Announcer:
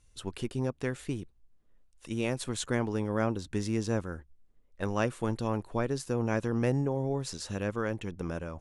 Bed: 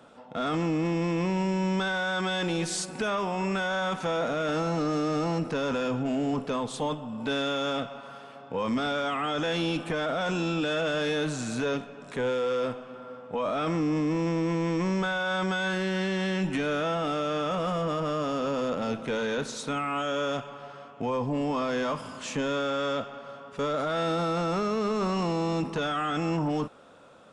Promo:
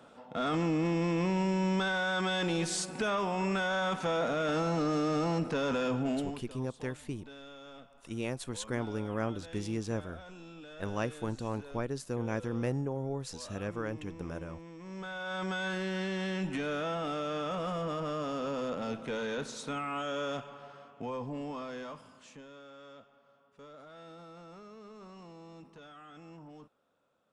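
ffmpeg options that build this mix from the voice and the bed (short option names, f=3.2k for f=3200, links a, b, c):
-filter_complex "[0:a]adelay=6000,volume=-4.5dB[a];[1:a]volume=12.5dB,afade=t=out:st=6.09:d=0.32:silence=0.11885,afade=t=in:st=14.81:d=0.75:silence=0.177828,afade=t=out:st=20.51:d=1.96:silence=0.141254[b];[a][b]amix=inputs=2:normalize=0"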